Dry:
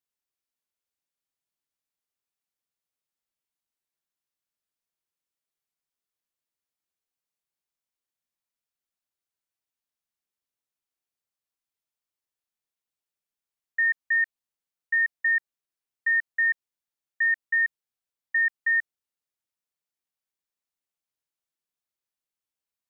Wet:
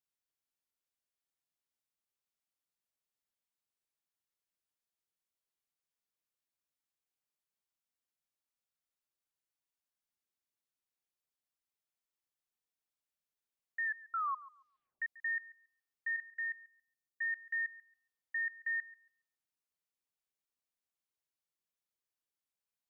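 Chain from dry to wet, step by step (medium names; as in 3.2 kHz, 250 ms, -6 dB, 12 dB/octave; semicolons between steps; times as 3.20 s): 13.85 s: tape stop 1.17 s; 16.16–17.21 s: peaking EQ 1.5 kHz -12 dB 1.8 oct; peak limiter -27 dBFS, peak gain reduction 8.5 dB; filtered feedback delay 139 ms, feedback 27%, low-pass 1.6 kHz, level -15.5 dB; trim -4.5 dB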